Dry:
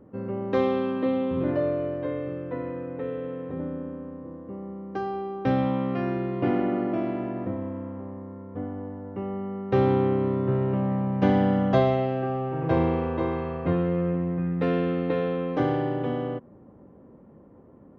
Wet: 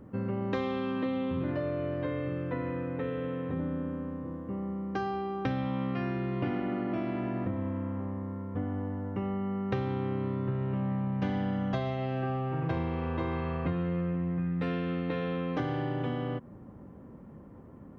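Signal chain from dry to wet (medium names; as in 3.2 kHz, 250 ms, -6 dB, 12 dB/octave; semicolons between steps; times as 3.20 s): peaking EQ 480 Hz -8.5 dB 2.1 oct; compression, threshold -35 dBFS, peak gain reduction 14 dB; trim +6.5 dB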